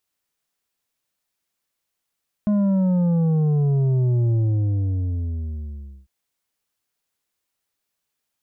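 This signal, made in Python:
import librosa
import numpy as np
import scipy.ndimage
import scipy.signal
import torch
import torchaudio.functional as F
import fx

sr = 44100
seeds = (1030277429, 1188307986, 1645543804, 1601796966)

y = fx.sub_drop(sr, level_db=-17.0, start_hz=210.0, length_s=3.6, drive_db=7.0, fade_s=1.75, end_hz=65.0)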